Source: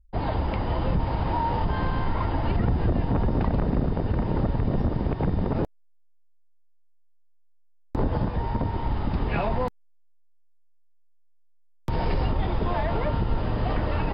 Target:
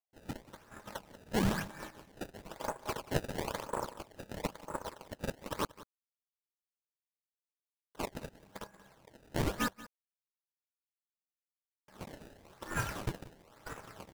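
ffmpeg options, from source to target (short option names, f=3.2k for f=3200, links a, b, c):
-filter_complex "[0:a]highpass=f=300:p=1,agate=range=-27dB:threshold=-27dB:ratio=16:detection=peak,aeval=exprs='val(0)*sin(2*PI*730*n/s)':c=same,acrusher=samples=23:mix=1:aa=0.000001:lfo=1:lforange=36.8:lforate=1,asettb=1/sr,asplit=3[a][b][c];[a]atrim=end=12.064[d];[b]atrim=start=12.06:end=13.01,asetpts=PTS-STARTPTS,afade=t=in:d=0.004:c=qsin,afade=t=out:st=0.946:d=0.004:c=qsin,asplit=2[e][f];[f]adelay=33,volume=-8.5dB[g];[e][g]amix=inputs=2:normalize=0,atrim=end_sample=41895[h];[c]atrim=start=13.006[i];[d][h]acrossfade=d=0.004:c1=hsin:c2=qsin[j];[j][i]acrossfade=d=0.004:c1=qsin:c2=hsin,aecho=1:1:183:0.126,volume=2dB"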